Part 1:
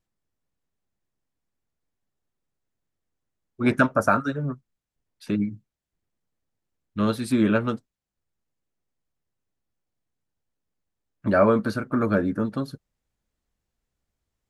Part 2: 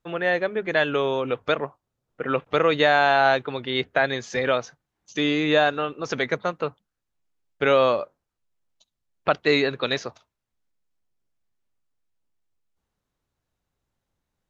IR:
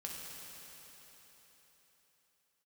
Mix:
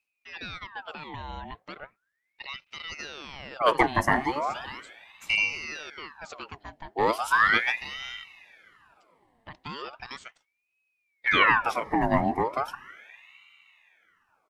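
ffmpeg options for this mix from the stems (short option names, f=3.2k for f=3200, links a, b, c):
-filter_complex "[0:a]volume=1.5dB,asplit=2[a][b];[b]volume=-15dB[c];[1:a]alimiter=limit=-16.5dB:level=0:latency=1:release=106,adelay=200,volume=-7.5dB[d];[2:a]atrim=start_sample=2205[e];[c][e]afir=irnorm=-1:irlink=0[f];[a][d][f]amix=inputs=3:normalize=0,equalizer=f=780:t=o:w=0.72:g=-7.5,aeval=exprs='val(0)*sin(2*PI*1500*n/s+1500*0.7/0.37*sin(2*PI*0.37*n/s))':c=same"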